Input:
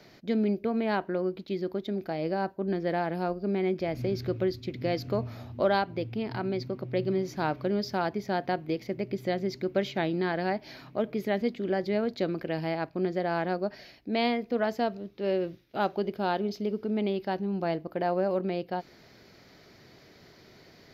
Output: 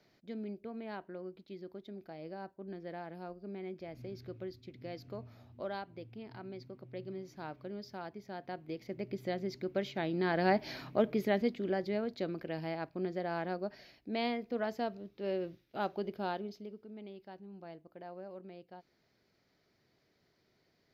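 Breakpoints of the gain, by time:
8.35 s -15 dB
9.05 s -7 dB
10.02 s -7 dB
10.61 s +3 dB
12.07 s -7.5 dB
16.26 s -7.5 dB
16.85 s -19.5 dB

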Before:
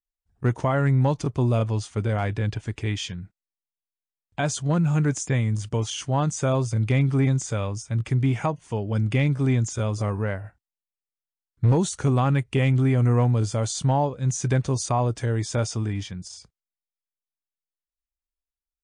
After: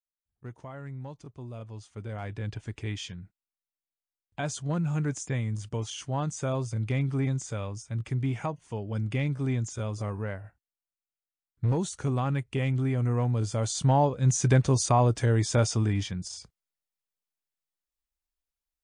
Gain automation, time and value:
1.49 s -19.5 dB
2.6 s -7 dB
13.19 s -7 dB
14.14 s +1 dB

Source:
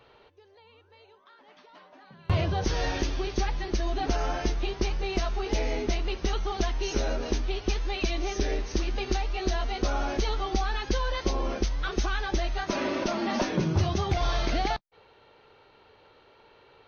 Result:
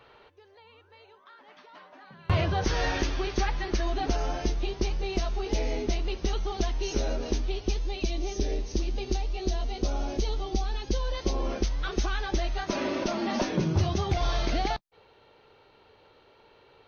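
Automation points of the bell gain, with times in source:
bell 1500 Hz 1.7 oct
3.82 s +4 dB
4.23 s -5.5 dB
7.42 s -5.5 dB
7.9 s -12.5 dB
10.9 s -12.5 dB
11.53 s -2.5 dB

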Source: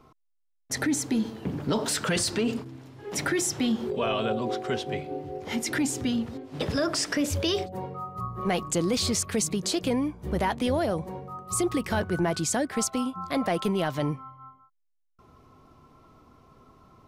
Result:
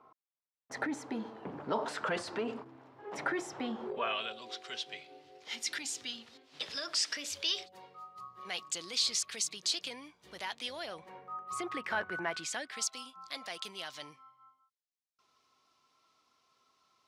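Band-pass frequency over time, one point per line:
band-pass, Q 1.2
3.89 s 920 Hz
4.34 s 4100 Hz
10.72 s 4100 Hz
11.32 s 1600 Hz
12.2 s 1600 Hz
12.95 s 4800 Hz

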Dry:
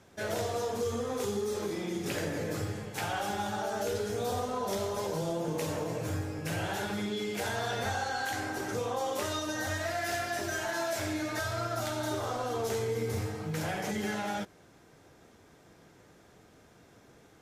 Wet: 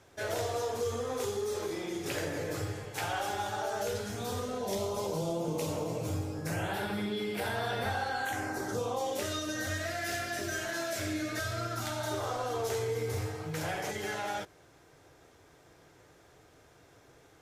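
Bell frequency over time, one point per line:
bell -13.5 dB 0.44 oct
3.7 s 200 Hz
4.86 s 1700 Hz
6.29 s 1700 Hz
6.76 s 6600 Hz
8.12 s 6600 Hz
9.33 s 880 Hz
11.7 s 880 Hz
12.15 s 210 Hz

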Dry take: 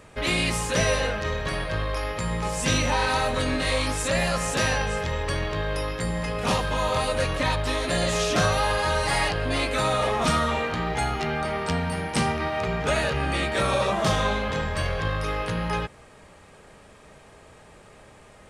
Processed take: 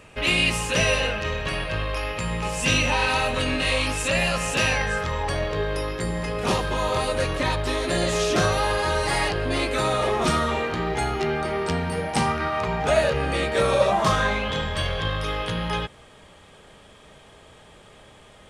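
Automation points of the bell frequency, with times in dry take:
bell +11 dB 0.28 oct
4.67 s 2700 Hz
5.67 s 370 Hz
11.9 s 370 Hz
12.39 s 1500 Hz
13.16 s 480 Hz
13.76 s 480 Hz
14.51 s 3300 Hz

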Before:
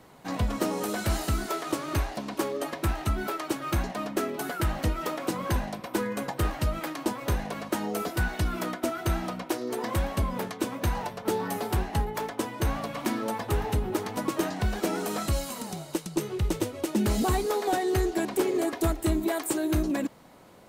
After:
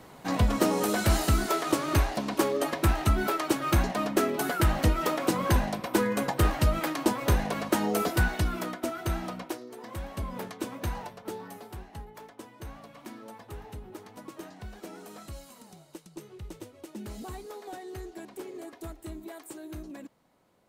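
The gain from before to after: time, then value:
8.14 s +3.5 dB
8.7 s -3 dB
9.45 s -3 dB
9.7 s -13.5 dB
10.39 s -5 dB
10.91 s -5 dB
11.71 s -15 dB

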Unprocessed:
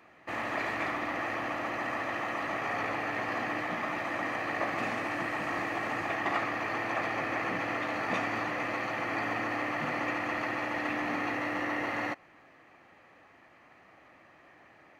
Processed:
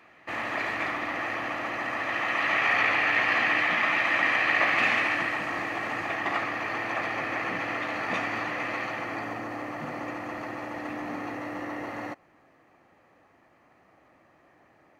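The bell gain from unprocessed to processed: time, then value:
bell 2600 Hz 2.2 oct
1.92 s +4.5 dB
2.55 s +14.5 dB
4.98 s +14.5 dB
5.49 s +3.5 dB
8.82 s +3.5 dB
9.42 s -7 dB

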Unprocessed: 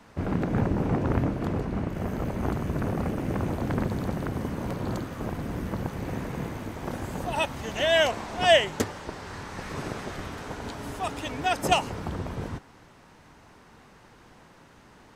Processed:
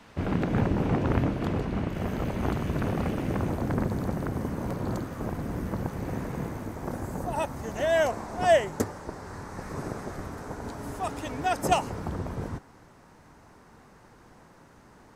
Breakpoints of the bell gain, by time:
bell 3100 Hz 1.2 oct
3.15 s +4.5 dB
3.71 s -6 dB
6.33 s -6 dB
7.24 s -14 dB
10.53 s -14 dB
11.09 s -7.5 dB

